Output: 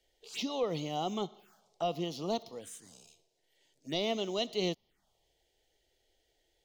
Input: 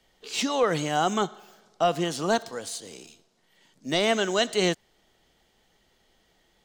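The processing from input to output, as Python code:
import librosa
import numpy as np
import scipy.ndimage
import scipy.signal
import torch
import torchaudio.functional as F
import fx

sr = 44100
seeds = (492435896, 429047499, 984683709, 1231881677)

y = fx.env_phaser(x, sr, low_hz=190.0, high_hz=1600.0, full_db=-27.5)
y = y * librosa.db_to_amplitude(-7.5)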